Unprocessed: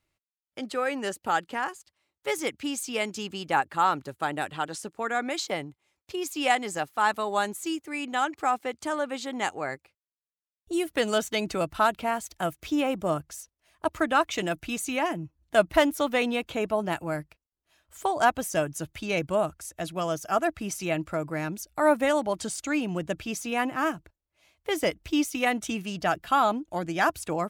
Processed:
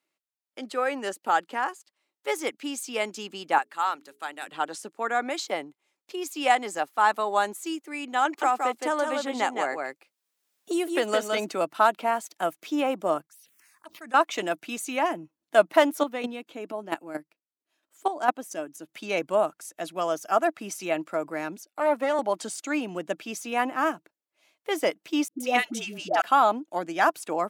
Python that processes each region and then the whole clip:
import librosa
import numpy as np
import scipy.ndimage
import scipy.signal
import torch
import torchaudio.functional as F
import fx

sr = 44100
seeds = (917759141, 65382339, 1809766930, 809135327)

y = fx.chain(x, sr, fx.highpass(hz=270.0, slope=12),
    fx.peak_eq(hz=470.0, db=-10.0, octaves=2.8),
    fx.hum_notches(base_hz=60, count=7), at=(3.58, 4.47))
y = fx.chain(y, sr, fx.echo_single(ms=165, db=-5.0),
    fx.band_squash(depth_pct=70), at=(8.25, 11.49))
y = fx.chain(y, sr, fx.tone_stack(knobs='5-5-5'),
    fx.env_phaser(low_hz=460.0, high_hz=3400.0, full_db=-38.5),
    fx.sustainer(db_per_s=21.0), at=(13.26, 14.14))
y = fx.chain(y, sr, fx.peak_eq(hz=290.0, db=6.5, octaves=0.84),
    fx.chopper(hz=4.4, depth_pct=65, duty_pct=10), at=(16.01, 18.89))
y = fx.chain(y, sr, fx.highpass(hz=210.0, slope=24),
    fx.high_shelf(hz=6700.0, db=-5.5),
    fx.tube_stage(drive_db=15.0, bias=0.55), at=(21.56, 22.19))
y = fx.chain(y, sr, fx.notch(hz=1100.0, q=8.1),
    fx.dynamic_eq(hz=4200.0, q=0.87, threshold_db=-41.0, ratio=4.0, max_db=5),
    fx.dispersion(late='highs', ms=122.0, hz=600.0), at=(25.28, 26.22))
y = scipy.signal.sosfilt(scipy.signal.butter(4, 220.0, 'highpass', fs=sr, output='sos'), y)
y = fx.dynamic_eq(y, sr, hz=860.0, q=0.77, threshold_db=-34.0, ratio=4.0, max_db=5)
y = y * librosa.db_to_amplitude(-1.5)